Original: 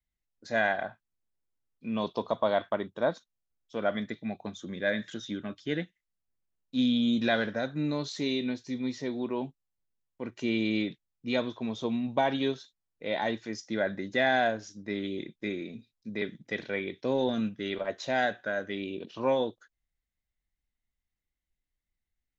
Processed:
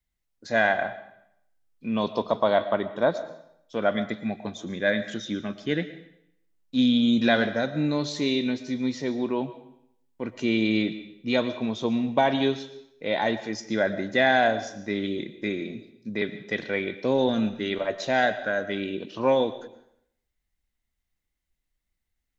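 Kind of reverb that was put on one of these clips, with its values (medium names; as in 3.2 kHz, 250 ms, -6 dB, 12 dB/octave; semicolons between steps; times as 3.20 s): algorithmic reverb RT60 0.73 s, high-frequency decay 0.95×, pre-delay 75 ms, DRR 13 dB; trim +5 dB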